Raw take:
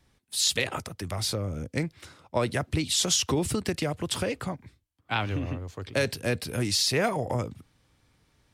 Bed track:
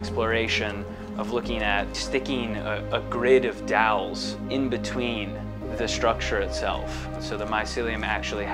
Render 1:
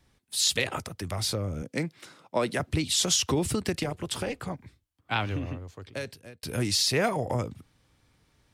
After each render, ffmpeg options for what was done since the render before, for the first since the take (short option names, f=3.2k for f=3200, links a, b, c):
-filter_complex "[0:a]asettb=1/sr,asplit=3[a][b][c];[a]atrim=end=1.624[d];[b]atrim=start=1.62:end=2.6,asetpts=PTS-STARTPTS,afade=t=in:d=0.004:c=qsin,afade=t=out:st=0.976:d=0.004:c=qsin,highpass=f=150:w=0.5412,highpass=f=150:w=1.3066[e];[c]atrim=start=2.596[f];[d][e]acrossfade=d=0.004:c1=hsin:c2=qsin[g];[g][f]acrossfade=d=0.004:c1=qsin:c2=hsin,asettb=1/sr,asplit=3[h][i][j];[h]atrim=end=3.834[k];[i]atrim=start=3.83:end=4.51,asetpts=PTS-STARTPTS,afade=t=in:d=0.004:c=qsin,afade=t=out:st=0.676:d=0.004:c=qsin,tremolo=f=270:d=0.621[l];[j]atrim=start=4.506[m];[k][l]acrossfade=d=0.004:c1=hsin:c2=qsin[n];[n][m]acrossfade=d=0.004:c1=qsin:c2=hsin,asplit=2[o][p];[o]atrim=end=6.43,asetpts=PTS-STARTPTS,afade=t=out:st=5.18:d=1.25[q];[p]atrim=start=6.43,asetpts=PTS-STARTPTS,afade=t=in:d=0.004:c=hsin[r];[q][r]concat=n=2:v=0:a=1"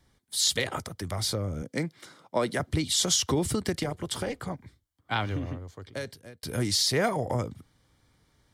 -af "bandreject=f=2.6k:w=5.7"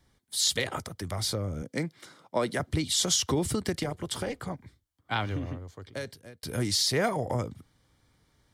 -af "volume=-1dB"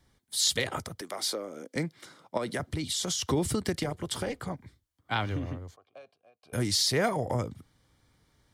-filter_complex "[0:a]asettb=1/sr,asplit=3[a][b][c];[a]atrim=end=1.014[d];[b]atrim=start=1.01:end=1.76,asetpts=PTS-STARTPTS,afade=t=in:d=0.004:c=qsin,afade=t=out:st=0.746:d=0.004:c=qsin,highpass=f=280:w=0.5412,highpass=f=280:w=1.3066[e];[c]atrim=start=1.756[f];[d][e]acrossfade=d=0.004:c1=hsin:c2=qsin[g];[g][f]acrossfade=d=0.004:c1=qsin:c2=hsin,asettb=1/sr,asplit=3[h][i][j];[h]atrim=end=2.374[k];[i]atrim=start=2.37:end=3.22,asetpts=PTS-STARTPTS,afade=t=in:d=0.004:c=qsin,afade=t=out:st=0.846:d=0.004:c=qsin,acompressor=threshold=-27dB:ratio=6:attack=3.2:release=140:knee=1:detection=peak[l];[j]atrim=start=3.216[m];[k][l]acrossfade=d=0.004:c1=hsin:c2=qsin[n];[n][m]acrossfade=d=0.004:c1=qsin:c2=hsin,asettb=1/sr,asplit=3[o][p][q];[o]atrim=end=5.764[r];[p]atrim=start=5.76:end=6.53,asetpts=PTS-STARTPTS,afade=t=in:d=0.004:c=qsin,afade=t=out:st=0.766:d=0.004:c=qsin,asplit=3[s][t][u];[s]bandpass=f=730:t=q:w=8,volume=0dB[v];[t]bandpass=f=1.09k:t=q:w=8,volume=-6dB[w];[u]bandpass=f=2.44k:t=q:w=8,volume=-9dB[x];[v][w][x]amix=inputs=3:normalize=0[y];[q]atrim=start=6.526[z];[r][y]acrossfade=d=0.004:c1=hsin:c2=qsin[aa];[aa][z]acrossfade=d=0.004:c1=qsin:c2=hsin"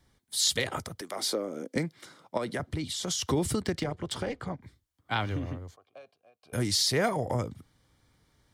-filter_complex "[0:a]asettb=1/sr,asplit=3[a][b][c];[a]atrim=end=1.164[d];[b]atrim=start=1.16:end=1.78,asetpts=PTS-STARTPTS,afade=t=in:d=0.004:c=qsin,afade=t=out:st=0.616:d=0.004:c=qsin,equalizer=f=230:t=o:w=2.8:g=6.5[e];[c]atrim=start=1.776[f];[d][e]acrossfade=d=0.004:c1=hsin:c2=qsin[g];[g][f]acrossfade=d=0.004:c1=qsin:c2=hsin,asettb=1/sr,asplit=3[h][i][j];[h]atrim=end=2.454[k];[i]atrim=start=2.45:end=3.11,asetpts=PTS-STARTPTS,afade=t=in:d=0.004:c=qsin,afade=t=out:st=0.656:d=0.004:c=qsin,highshelf=f=4.2k:g=-6[l];[j]atrim=start=3.106[m];[k][l]acrossfade=d=0.004:c1=hsin:c2=qsin[n];[n][m]acrossfade=d=0.004:c1=qsin:c2=hsin,asettb=1/sr,asplit=3[o][p][q];[o]atrim=end=3.624[r];[p]atrim=start=3.62:end=4.63,asetpts=PTS-STARTPTS,afade=t=in:d=0.004:c=qsin,afade=t=out:st=1.006:d=0.004:c=qsin,adynamicsmooth=sensitivity=5.5:basefreq=5.4k[s];[q]atrim=start=4.626[t];[r][s]acrossfade=d=0.004:c1=hsin:c2=qsin[u];[u][t]acrossfade=d=0.004:c1=qsin:c2=hsin"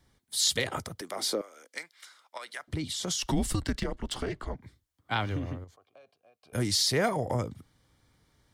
-filter_complex "[0:a]asettb=1/sr,asplit=3[a][b][c];[a]atrim=end=1.414[d];[b]atrim=start=1.41:end=2.68,asetpts=PTS-STARTPTS,afade=t=in:d=0.004:c=qsin,afade=t=out:st=1.266:d=0.004:c=qsin,highpass=1.3k[e];[c]atrim=start=2.676[f];[d][e]acrossfade=d=0.004:c1=hsin:c2=qsin[g];[g][f]acrossfade=d=0.004:c1=qsin:c2=hsin,asettb=1/sr,asplit=3[h][i][j];[h]atrim=end=3.184[k];[i]atrim=start=3.18:end=4.55,asetpts=PTS-STARTPTS,afade=t=in:d=0.004:c=qsin,afade=t=out:st=1.366:d=0.004:c=qsin,afreqshift=-120[l];[j]atrim=start=4.546[m];[k][l]acrossfade=d=0.004:c1=hsin:c2=qsin[n];[n][m]acrossfade=d=0.004:c1=qsin:c2=hsin,asettb=1/sr,asplit=3[o][p][q];[o]atrim=end=5.644[r];[p]atrim=start=5.64:end=6.55,asetpts=PTS-STARTPTS,afade=t=in:d=0.004:c=qsin,afade=t=out:st=0.906:d=0.004:c=qsin,acompressor=threshold=-55dB:ratio=2:attack=3.2:release=140:knee=1:detection=peak[s];[q]atrim=start=6.546[t];[r][s]acrossfade=d=0.004:c1=hsin:c2=qsin[u];[u][t]acrossfade=d=0.004:c1=qsin:c2=hsin"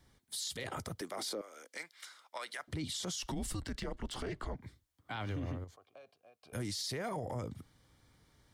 -af "acompressor=threshold=-33dB:ratio=3,alimiter=level_in=6.5dB:limit=-24dB:level=0:latency=1:release=19,volume=-6.5dB"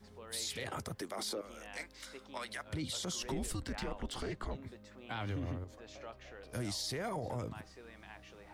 -filter_complex "[1:a]volume=-26.5dB[a];[0:a][a]amix=inputs=2:normalize=0"